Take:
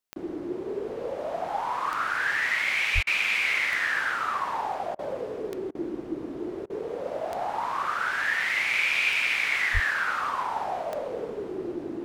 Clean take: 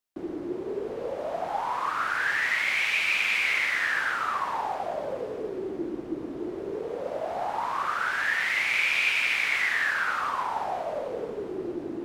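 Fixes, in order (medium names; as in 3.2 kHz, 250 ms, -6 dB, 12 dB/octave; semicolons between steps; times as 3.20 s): de-click; de-plosive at 2.94/9.73 s; interpolate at 3.03/4.95/5.71/6.66 s, 38 ms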